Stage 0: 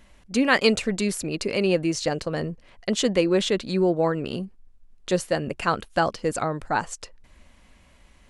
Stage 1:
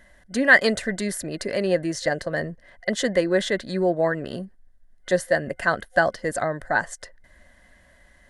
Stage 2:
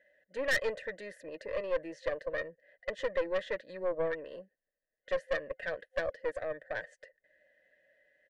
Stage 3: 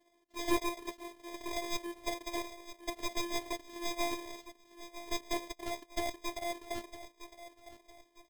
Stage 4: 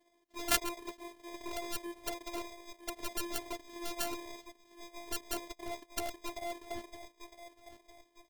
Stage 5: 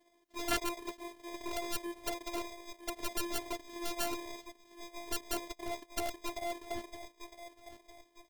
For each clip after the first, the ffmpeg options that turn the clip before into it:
-af "superequalizer=8b=2.24:11b=3.55:12b=0.501:16b=1.58,volume=0.75"
-filter_complex "[0:a]asplit=3[s0][s1][s2];[s0]bandpass=f=530:t=q:w=8,volume=1[s3];[s1]bandpass=f=1840:t=q:w=8,volume=0.501[s4];[s2]bandpass=f=2480:t=q:w=8,volume=0.355[s5];[s3][s4][s5]amix=inputs=3:normalize=0,aecho=1:1:6.5:0.42,aeval=exprs='(tanh(17.8*val(0)+0.5)-tanh(0.5))/17.8':c=same"
-filter_complex "[0:a]asplit=2[s0][s1];[s1]adelay=957,lowpass=f=2000:p=1,volume=0.224,asplit=2[s2][s3];[s3]adelay=957,lowpass=f=2000:p=1,volume=0.4,asplit=2[s4][s5];[s5]adelay=957,lowpass=f=2000:p=1,volume=0.4,asplit=2[s6][s7];[s7]adelay=957,lowpass=f=2000:p=1,volume=0.4[s8];[s0][s2][s4][s6][s8]amix=inputs=5:normalize=0,acrusher=samples=31:mix=1:aa=0.000001,afftfilt=real='hypot(re,im)*cos(PI*b)':imag='0':win_size=512:overlap=0.75,volume=1.33"
-af "aeval=exprs='0.251*(cos(1*acos(clip(val(0)/0.251,-1,1)))-cos(1*PI/2))+0.112*(cos(3*acos(clip(val(0)/0.251,-1,1)))-cos(3*PI/2))':c=same,volume=2.66"
-af "asoftclip=type=tanh:threshold=0.133,volume=1.26"

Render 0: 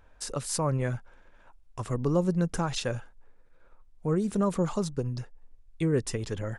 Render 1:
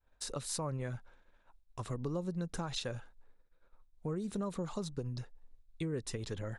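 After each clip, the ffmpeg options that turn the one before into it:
-af "equalizer=f=3900:w=5.3:g=8,acompressor=threshold=0.0316:ratio=3,agate=range=0.0224:threshold=0.00398:ratio=3:detection=peak,volume=0.562"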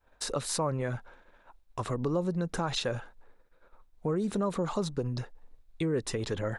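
-filter_complex "[0:a]highshelf=f=2700:g=-9,asplit=2[s0][s1];[s1]alimiter=level_in=3.16:limit=0.0631:level=0:latency=1:release=19,volume=0.316,volume=1.19[s2];[s0][s2]amix=inputs=2:normalize=0,lowshelf=f=210:g=-9.5,volume=2.11"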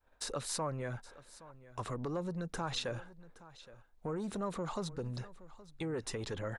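-filter_complex "[0:a]acrossover=split=690[s0][s1];[s0]asoftclip=type=tanh:threshold=0.0355[s2];[s2][s1]amix=inputs=2:normalize=0,aecho=1:1:820:0.119,volume=0.562"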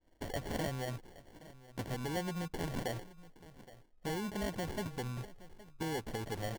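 -af "acrusher=samples=35:mix=1:aa=0.000001"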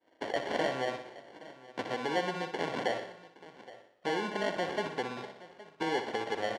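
-filter_complex "[0:a]highpass=380,lowpass=3800,asplit=2[s0][s1];[s1]aecho=0:1:61|122|183|244|305|366:0.355|0.195|0.107|0.059|0.0325|0.0179[s2];[s0][s2]amix=inputs=2:normalize=0,volume=2.66"

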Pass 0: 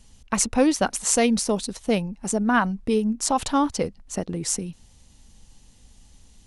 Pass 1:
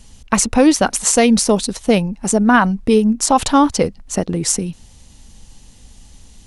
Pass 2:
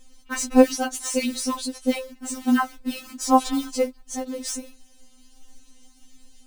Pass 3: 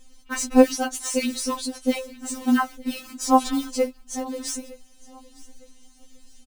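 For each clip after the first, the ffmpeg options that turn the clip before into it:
-af "alimiter=level_in=3.16:limit=0.891:release=50:level=0:latency=1,volume=0.891"
-filter_complex "[0:a]acrossover=split=5500[s0][s1];[s1]volume=9.44,asoftclip=hard,volume=0.106[s2];[s0][s2]amix=inputs=2:normalize=0,acrusher=bits=5:mode=log:mix=0:aa=0.000001,afftfilt=real='re*3.46*eq(mod(b,12),0)':imag='im*3.46*eq(mod(b,12),0)':win_size=2048:overlap=0.75,volume=0.473"
-af "aecho=1:1:909|1818:0.0794|0.0262"

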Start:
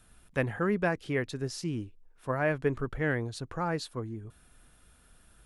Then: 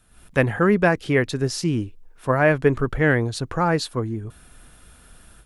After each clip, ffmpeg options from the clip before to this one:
-af "dynaudnorm=f=110:g=3:m=3.55"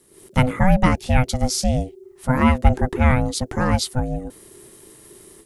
-af "aeval=exprs='val(0)*sin(2*PI*380*n/s)':c=same,bass=f=250:g=10,treble=f=4000:g=11"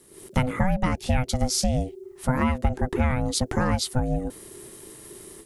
-af "acompressor=threshold=0.0891:ratio=6,volume=1.26"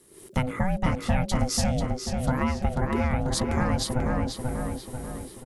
-filter_complex "[0:a]asplit=2[s0][s1];[s1]adelay=489,lowpass=f=3800:p=1,volume=0.708,asplit=2[s2][s3];[s3]adelay=489,lowpass=f=3800:p=1,volume=0.52,asplit=2[s4][s5];[s5]adelay=489,lowpass=f=3800:p=1,volume=0.52,asplit=2[s6][s7];[s7]adelay=489,lowpass=f=3800:p=1,volume=0.52,asplit=2[s8][s9];[s9]adelay=489,lowpass=f=3800:p=1,volume=0.52,asplit=2[s10][s11];[s11]adelay=489,lowpass=f=3800:p=1,volume=0.52,asplit=2[s12][s13];[s13]adelay=489,lowpass=f=3800:p=1,volume=0.52[s14];[s0][s2][s4][s6][s8][s10][s12][s14]amix=inputs=8:normalize=0,volume=0.708"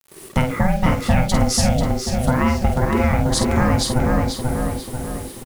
-filter_complex "[0:a]acrusher=bits=7:mix=0:aa=0.000001,asplit=2[s0][s1];[s1]adelay=49,volume=0.447[s2];[s0][s2]amix=inputs=2:normalize=0,volume=2.24"

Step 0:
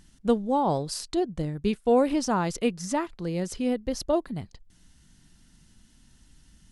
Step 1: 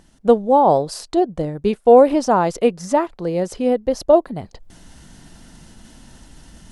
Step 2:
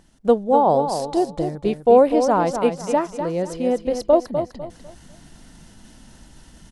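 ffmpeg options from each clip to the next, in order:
-af "equalizer=f=630:w=0.71:g=12,areverse,acompressor=mode=upward:threshold=0.0224:ratio=2.5,areverse,volume=1.19"
-af "aecho=1:1:250|500|750|1000:0.398|0.119|0.0358|0.0107,volume=0.708"

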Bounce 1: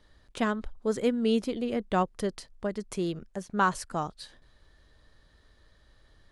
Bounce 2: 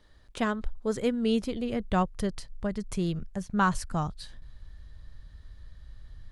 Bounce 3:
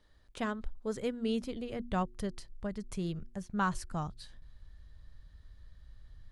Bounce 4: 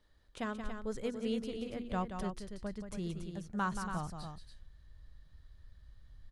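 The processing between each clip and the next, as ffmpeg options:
-af "asubboost=boost=6.5:cutoff=150"
-af "bandreject=f=119.8:t=h:w=4,bandreject=f=239.6:t=h:w=4,bandreject=f=359.4:t=h:w=4,volume=0.473"
-af "aecho=1:1:177.8|282.8:0.398|0.398,volume=0.668"

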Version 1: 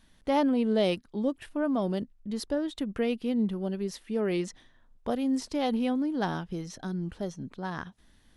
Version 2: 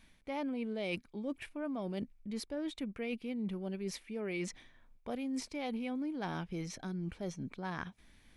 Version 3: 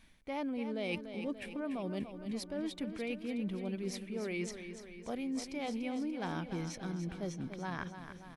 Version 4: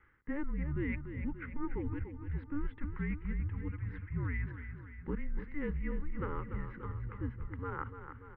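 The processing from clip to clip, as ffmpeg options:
-af "equalizer=f=2300:t=o:w=0.22:g=14,areverse,acompressor=threshold=0.02:ratio=6,areverse,volume=0.841"
-af "aecho=1:1:291|582|873|1164|1455|1746|2037:0.335|0.201|0.121|0.0724|0.0434|0.026|0.0156"
-af "highpass=f=210:t=q:w=0.5412,highpass=f=210:t=q:w=1.307,lowpass=f=2200:t=q:w=0.5176,lowpass=f=2200:t=q:w=0.7071,lowpass=f=2200:t=q:w=1.932,afreqshift=-290,asuperstop=centerf=670:order=4:qfactor=1.9,volume=1.58"

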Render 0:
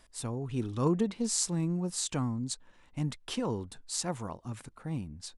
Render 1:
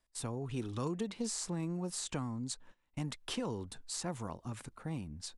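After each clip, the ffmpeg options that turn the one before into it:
-filter_complex "[0:a]agate=range=0.112:threshold=0.00224:ratio=16:detection=peak,acrossover=split=380|2400[s0][s1][s2];[s0]acompressor=threshold=0.0126:ratio=4[s3];[s1]acompressor=threshold=0.01:ratio=4[s4];[s2]acompressor=threshold=0.0112:ratio=4[s5];[s3][s4][s5]amix=inputs=3:normalize=0"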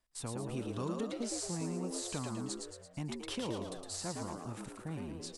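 -filter_complex "[0:a]asplit=8[s0][s1][s2][s3][s4][s5][s6][s7];[s1]adelay=112,afreqshift=85,volume=0.631[s8];[s2]adelay=224,afreqshift=170,volume=0.327[s9];[s3]adelay=336,afreqshift=255,volume=0.17[s10];[s4]adelay=448,afreqshift=340,volume=0.0891[s11];[s5]adelay=560,afreqshift=425,volume=0.0462[s12];[s6]adelay=672,afreqshift=510,volume=0.024[s13];[s7]adelay=784,afreqshift=595,volume=0.0124[s14];[s0][s8][s9][s10][s11][s12][s13][s14]amix=inputs=8:normalize=0,volume=0.794"

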